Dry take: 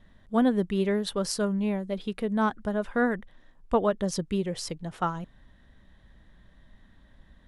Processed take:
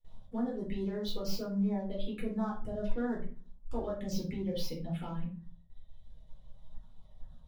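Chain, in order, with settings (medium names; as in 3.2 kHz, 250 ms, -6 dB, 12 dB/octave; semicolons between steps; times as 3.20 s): tracing distortion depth 0.12 ms; gate with hold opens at -47 dBFS; reverb removal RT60 1.6 s; compression 2.5:1, threshold -32 dBFS, peak gain reduction 10 dB; waveshaping leveller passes 1; peak limiter -29 dBFS, peak gain reduction 9.5 dB; touch-sensitive phaser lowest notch 230 Hz, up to 2.8 kHz, full sweep at -31.5 dBFS; simulated room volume 260 m³, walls furnished, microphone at 4.2 m; trim -8 dB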